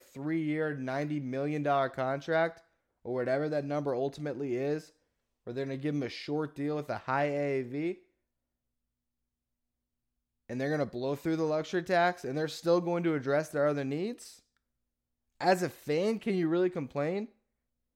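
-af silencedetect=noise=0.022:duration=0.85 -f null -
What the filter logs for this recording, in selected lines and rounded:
silence_start: 7.92
silence_end: 10.50 | silence_duration: 2.58
silence_start: 14.12
silence_end: 15.41 | silence_duration: 1.29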